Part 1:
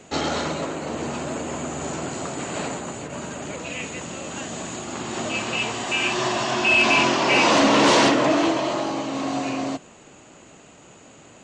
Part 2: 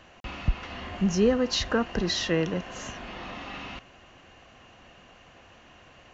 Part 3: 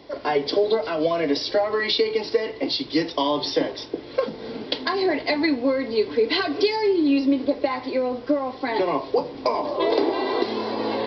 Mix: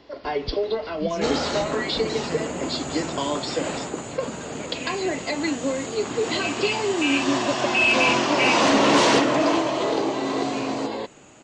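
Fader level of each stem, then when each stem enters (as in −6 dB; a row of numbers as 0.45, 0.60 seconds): −1.5, −8.0, −4.5 decibels; 1.10, 0.00, 0.00 seconds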